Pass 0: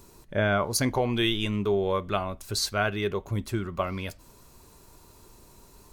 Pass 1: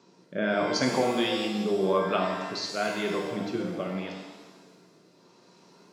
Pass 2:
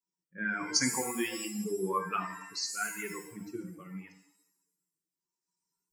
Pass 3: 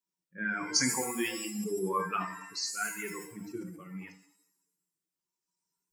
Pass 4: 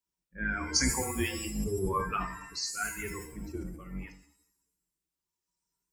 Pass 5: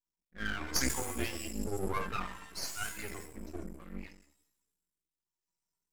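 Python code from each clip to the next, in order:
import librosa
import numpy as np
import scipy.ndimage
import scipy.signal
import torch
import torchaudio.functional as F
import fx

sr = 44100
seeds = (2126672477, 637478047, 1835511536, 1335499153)

y1 = fx.rotary(x, sr, hz=0.85)
y1 = scipy.signal.sosfilt(scipy.signal.ellip(3, 1.0, 40, [170.0, 5400.0], 'bandpass', fs=sr, output='sos'), y1)
y1 = fx.rev_shimmer(y1, sr, seeds[0], rt60_s=1.2, semitones=7, shimmer_db=-8, drr_db=1.0)
y2 = fx.bin_expand(y1, sr, power=2.0)
y2 = fx.bass_treble(y2, sr, bass_db=-7, treble_db=15)
y2 = fx.fixed_phaser(y2, sr, hz=1500.0, stages=4)
y2 = y2 * librosa.db_to_amplitude(2.5)
y3 = fx.sustainer(y2, sr, db_per_s=97.0)
y4 = fx.octave_divider(y3, sr, octaves=2, level_db=1.0)
y5 = np.maximum(y4, 0.0)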